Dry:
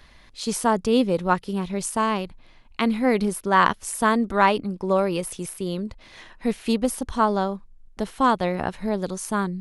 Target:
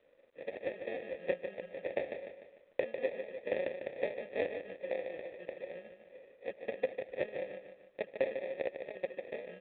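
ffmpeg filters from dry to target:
-filter_complex "[0:a]lowshelf=f=240:g=-5.5,asplit=3[s0][s1][s2];[s0]afade=t=out:st=0.98:d=0.02[s3];[s1]aecho=1:1:1.6:0.74,afade=t=in:st=0.98:d=0.02,afade=t=out:st=3.08:d=0.02[s4];[s2]afade=t=in:st=3.08:d=0.02[s5];[s3][s4][s5]amix=inputs=3:normalize=0,acompressor=threshold=0.0631:ratio=8,aeval=exprs='0.316*(cos(1*acos(clip(val(0)/0.316,-1,1)))-cos(1*PI/2))+0.0112*(cos(5*acos(clip(val(0)/0.316,-1,1)))-cos(5*PI/2))+0.0141*(cos(6*acos(clip(val(0)/0.316,-1,1)))-cos(6*PI/2))+0.0708*(cos(7*acos(clip(val(0)/0.316,-1,1)))-cos(7*PI/2))':c=same,acrossover=split=1400[s6][s7];[s6]aeval=exprs='val(0)*(1-0.7/2+0.7/2*cos(2*PI*6.6*n/s))':c=same[s8];[s7]aeval=exprs='val(0)*(1-0.7/2-0.7/2*cos(2*PI*6.6*n/s))':c=same[s9];[s8][s9]amix=inputs=2:normalize=0,acrusher=samples=30:mix=1:aa=0.000001,asplit=3[s10][s11][s12];[s10]bandpass=f=530:t=q:w=8,volume=1[s13];[s11]bandpass=f=1840:t=q:w=8,volume=0.501[s14];[s12]bandpass=f=2480:t=q:w=8,volume=0.355[s15];[s13][s14][s15]amix=inputs=3:normalize=0,aecho=1:1:149|298|447|596|745:0.398|0.183|0.0842|0.0388|0.0178,volume=3.76" -ar 8000 -c:a adpcm_g726 -b:a 40k

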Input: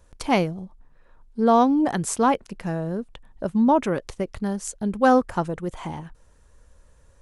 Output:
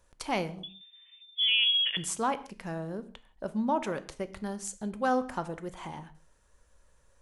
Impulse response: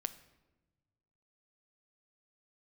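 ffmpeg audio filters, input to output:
-filter_complex "[0:a]asettb=1/sr,asplit=3[s0][s1][s2];[s0]atrim=end=0.634[s3];[s1]atrim=start=0.63:end=1.97,asetpts=PTS-STARTPTS,afade=t=in:d=0.004:c=qsin,afade=t=out:st=1.336:d=0.004:c=qsin,lowpass=f=3100:t=q:w=0.5098,lowpass=f=3100:t=q:w=0.6013,lowpass=f=3100:t=q:w=0.9,lowpass=f=3100:t=q:w=2.563,afreqshift=-3600[s4];[s2]atrim=start=1.966[s5];[s3][s4]acrossfade=d=0.004:c1=hsin:c2=qsin[s6];[s6][s5]acrossfade=d=0.004:c1=qsin:c2=hsin,asplit=2[s7][s8];[s8]alimiter=limit=0.168:level=0:latency=1:release=80,volume=1.33[s9];[s7][s9]amix=inputs=2:normalize=0,lowshelf=f=430:g=-8[s10];[1:a]atrim=start_sample=2205,afade=t=out:st=0.3:d=0.01,atrim=end_sample=13671,asetrate=57330,aresample=44100[s11];[s10][s11]afir=irnorm=-1:irlink=0,volume=0.376"

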